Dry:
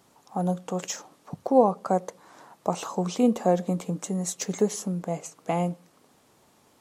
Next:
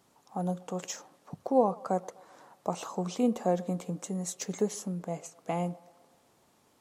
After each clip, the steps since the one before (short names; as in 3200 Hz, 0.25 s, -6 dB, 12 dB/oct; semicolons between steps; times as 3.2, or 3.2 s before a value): band-limited delay 0.127 s, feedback 55%, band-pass 880 Hz, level -20.5 dB; gain -5.5 dB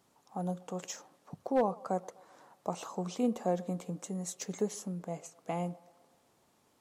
hard clip -16.5 dBFS, distortion -23 dB; gain -3.5 dB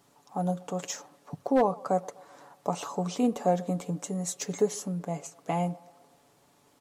comb 7 ms, depth 42%; gain +5.5 dB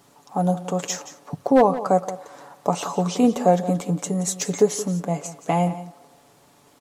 echo 0.175 s -14.5 dB; gain +8 dB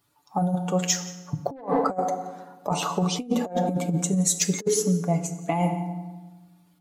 per-bin expansion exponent 1.5; FDN reverb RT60 1.2 s, low-frequency decay 1.3×, high-frequency decay 0.75×, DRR 9 dB; negative-ratio compressor -25 dBFS, ratio -0.5; gain +2 dB